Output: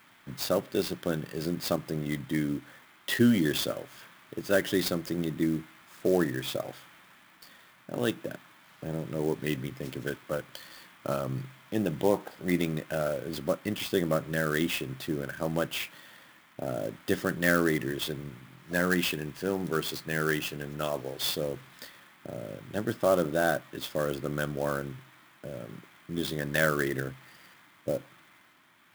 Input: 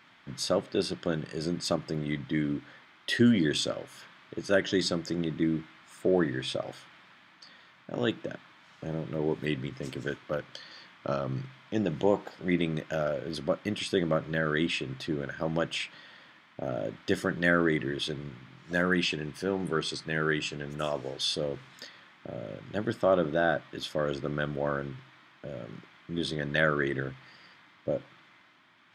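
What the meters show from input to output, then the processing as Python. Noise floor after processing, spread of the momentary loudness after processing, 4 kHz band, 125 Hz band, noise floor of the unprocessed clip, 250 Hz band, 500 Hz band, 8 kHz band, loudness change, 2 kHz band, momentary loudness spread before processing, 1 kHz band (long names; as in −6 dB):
−59 dBFS, 16 LU, −1.5 dB, 0.0 dB, −59 dBFS, 0.0 dB, 0.0 dB, +3.0 dB, 0.0 dB, −0.5 dB, 16 LU, 0.0 dB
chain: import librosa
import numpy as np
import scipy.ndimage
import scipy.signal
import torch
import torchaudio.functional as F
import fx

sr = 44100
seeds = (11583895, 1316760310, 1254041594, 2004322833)

y = fx.clock_jitter(x, sr, seeds[0], jitter_ms=0.028)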